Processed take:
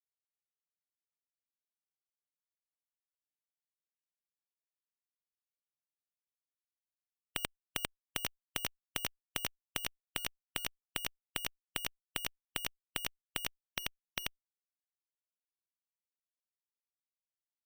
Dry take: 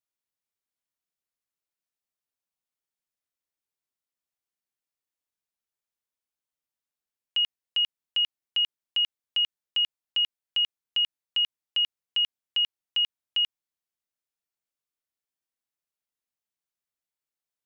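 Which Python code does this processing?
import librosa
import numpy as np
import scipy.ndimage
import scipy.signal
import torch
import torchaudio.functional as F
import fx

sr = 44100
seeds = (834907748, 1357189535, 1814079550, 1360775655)

y = fx.peak_eq(x, sr, hz=78.0, db=14.5, octaves=2.7, at=(7.37, 9.84))
y = y + 10.0 ** (-16.5 / 20.0) * np.pad(y, (int(816 * sr / 1000.0), 0))[:len(y)]
y = fx.fuzz(y, sr, gain_db=43.0, gate_db=-49.0)
y = fx.spectral_comp(y, sr, ratio=4.0)
y = y * 10.0 ** (-3.0 / 20.0)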